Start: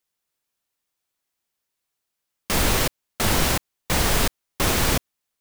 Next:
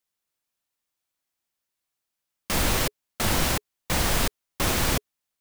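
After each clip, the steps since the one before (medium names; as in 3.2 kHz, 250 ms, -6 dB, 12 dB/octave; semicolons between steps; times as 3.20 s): band-stop 420 Hz, Q 12; trim -3 dB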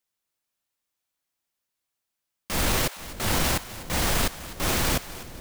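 transient shaper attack -5 dB, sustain +3 dB; two-band feedback delay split 660 Hz, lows 466 ms, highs 252 ms, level -15 dB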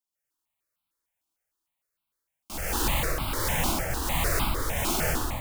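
plate-style reverb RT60 2.2 s, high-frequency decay 0.55×, pre-delay 115 ms, DRR -8 dB; stepped phaser 6.6 Hz 490–1800 Hz; trim -6.5 dB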